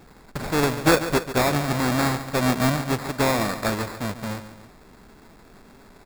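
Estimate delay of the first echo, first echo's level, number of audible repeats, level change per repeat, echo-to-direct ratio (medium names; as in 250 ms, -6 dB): 141 ms, -12.0 dB, 2, -6.0 dB, -11.0 dB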